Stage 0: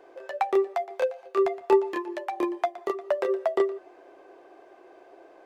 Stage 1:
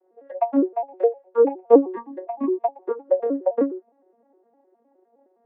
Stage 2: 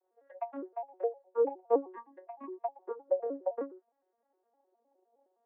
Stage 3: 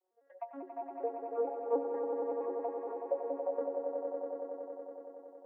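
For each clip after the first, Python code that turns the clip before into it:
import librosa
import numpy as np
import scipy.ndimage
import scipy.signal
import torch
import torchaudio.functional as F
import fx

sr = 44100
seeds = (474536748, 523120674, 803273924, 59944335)

y1 = fx.vocoder_arp(x, sr, chord='major triad', root=54, every_ms=103)
y1 = fx.spectral_expand(y1, sr, expansion=1.5)
y1 = y1 * librosa.db_to_amplitude(6.5)
y2 = fx.filter_lfo_bandpass(y1, sr, shape='sine', hz=0.55, low_hz=720.0, high_hz=1700.0, q=1.0)
y2 = y2 * librosa.db_to_amplitude(-8.5)
y3 = fx.echo_swell(y2, sr, ms=93, loudest=5, wet_db=-7.0)
y3 = y3 * librosa.db_to_amplitude(-5.0)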